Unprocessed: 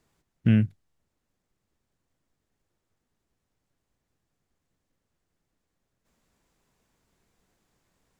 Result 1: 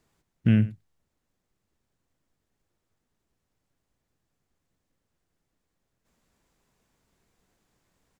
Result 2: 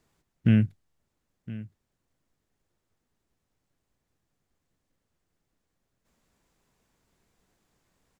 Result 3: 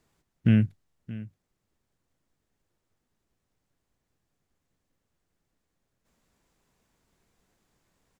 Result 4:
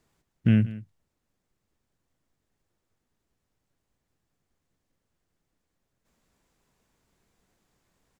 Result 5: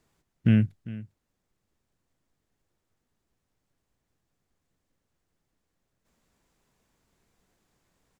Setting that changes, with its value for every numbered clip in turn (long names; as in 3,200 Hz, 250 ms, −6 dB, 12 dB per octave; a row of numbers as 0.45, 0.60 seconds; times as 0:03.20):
single-tap delay, delay time: 93, 1,015, 625, 181, 400 milliseconds